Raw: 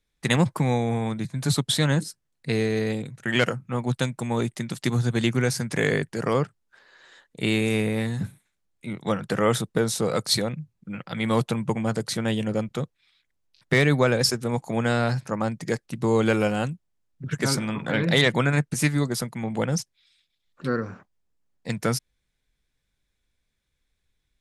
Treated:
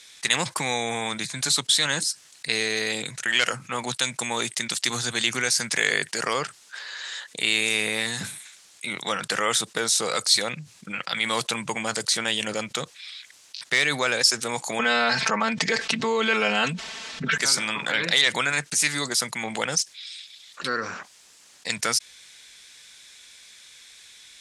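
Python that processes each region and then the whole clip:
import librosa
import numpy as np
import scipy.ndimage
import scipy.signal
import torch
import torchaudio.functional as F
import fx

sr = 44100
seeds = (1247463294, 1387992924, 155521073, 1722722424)

y = fx.chain(x, sr, fx.lowpass(hz=3400.0, slope=12),
    fx.comb(ms=4.5, depth=0.94),
    fx.env_flatten(amount_pct=70), at=(14.79, 17.38))
y = fx.weighting(y, sr, curve='ITU-R 468')
y = fx.env_flatten(y, sr, amount_pct=50)
y = F.gain(torch.from_numpy(y), -8.5).numpy()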